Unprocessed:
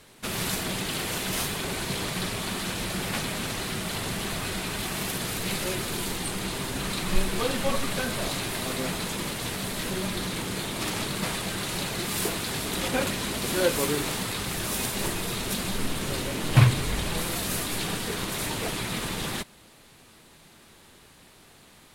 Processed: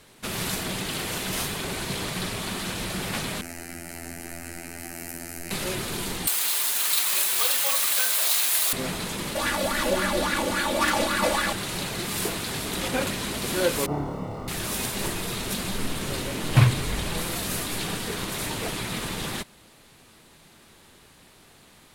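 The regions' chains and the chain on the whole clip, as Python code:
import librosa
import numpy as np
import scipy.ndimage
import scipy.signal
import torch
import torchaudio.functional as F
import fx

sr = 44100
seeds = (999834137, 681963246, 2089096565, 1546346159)

y = fx.chain(x, sr, fx.peak_eq(hz=1200.0, db=-5.0, octaves=1.3),
    fx.robotise(hz=84.9),
    fx.fixed_phaser(hz=710.0, stages=8), at=(3.41, 5.51))
y = fx.chain(y, sr, fx.highpass(hz=810.0, slope=12),
    fx.high_shelf(hz=3600.0, db=12.0),
    fx.resample_bad(factor=2, down='none', up='zero_stuff'), at=(6.27, 8.73))
y = fx.chain(y, sr, fx.comb(ms=3.5, depth=0.93),
    fx.bell_lfo(hz=3.6, low_hz=510.0, high_hz=1700.0, db=15), at=(9.35, 11.53))
y = fx.chain(y, sr, fx.self_delay(depth_ms=0.68),
    fx.savgol(points=65),
    fx.room_flutter(wall_m=4.8, rt60_s=0.6), at=(13.86, 14.48))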